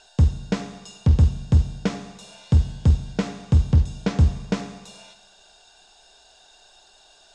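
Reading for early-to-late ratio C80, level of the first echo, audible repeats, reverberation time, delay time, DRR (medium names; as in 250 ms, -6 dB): 14.0 dB, no echo, no echo, 1.1 s, no echo, 9.5 dB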